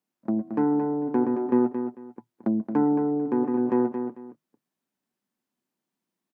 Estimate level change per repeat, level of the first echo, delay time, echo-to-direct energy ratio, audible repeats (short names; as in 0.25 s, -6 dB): -13.0 dB, -8.0 dB, 0.223 s, -8.0 dB, 2